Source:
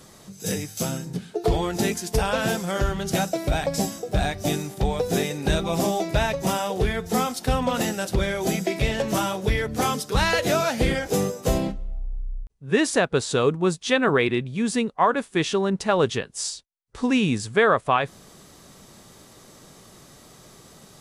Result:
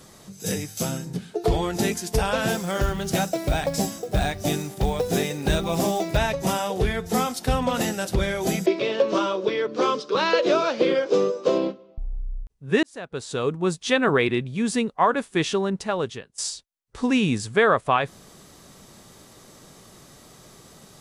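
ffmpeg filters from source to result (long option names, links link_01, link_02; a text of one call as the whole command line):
ffmpeg -i in.wav -filter_complex "[0:a]asettb=1/sr,asplit=3[link_01][link_02][link_03];[link_01]atrim=end=2.514[link_04];[link_02]atrim=start=2.51:end=6.17,asetpts=PTS-STARTPTS,afade=type=in:duration=0.004:curve=qsin,afade=type=out:start_time=3.656:duration=0.004:curve=qsin,acrusher=bits=6:mode=log:mix=0:aa=0.000001[link_05];[link_03]atrim=start=6.166[link_06];[link_04][link_05]acrossfade=duration=0.004:curve1=hsin:curve2=qsin[link_07];[link_07][link_06]acrossfade=duration=0.004:curve1=qsin:curve2=hsin,asettb=1/sr,asplit=3[link_08][link_09][link_10];[link_08]atrim=end=8.664[link_11];[link_09]atrim=start=8.66:end=11.98,asetpts=PTS-STARTPTS,afade=type=in:duration=0.004:curve=qsin,afade=type=out:start_time=3.316:duration=0.004:curve=qsin,highpass=frequency=220:width=0.5412,highpass=frequency=220:width=1.3066,equalizer=frequency=240:width_type=q:width=4:gain=-5,equalizer=frequency=360:width_type=q:width=4:gain=8,equalizer=frequency=540:width_type=q:width=4:gain=8,equalizer=frequency=770:width_type=q:width=4:gain=-9,equalizer=frequency=1100:width_type=q:width=4:gain=7,equalizer=frequency=1900:width_type=q:width=4:gain=-7,lowpass=frequency=5000:width=0.5412,lowpass=frequency=5000:width=1.3066[link_12];[link_10]atrim=start=11.976[link_13];[link_11][link_12]acrossfade=duration=0.004:curve1=hsin:curve2=qsin[link_14];[link_14][link_13]acrossfade=duration=0.004:curve1=qsin:curve2=hsin,asplit=3[link_15][link_16][link_17];[link_15]atrim=end=12.83,asetpts=PTS-STARTPTS,afade=type=out:start_time=12.826:duration=0.004:curve=hsin[link_18];[link_16]atrim=start=12.83:end=16.38,asetpts=PTS-STARTPTS,afade=type=in:duration=1.01,afade=type=out:start_time=2.66:duration=0.89:silence=0.141254[link_19];[link_17]atrim=start=16.38,asetpts=PTS-STARTPTS,afade=type=in:duration=0.004:curve=hsin:silence=0.141254[link_20];[link_18][link_19][link_20]concat=n=3:v=0:a=1" out.wav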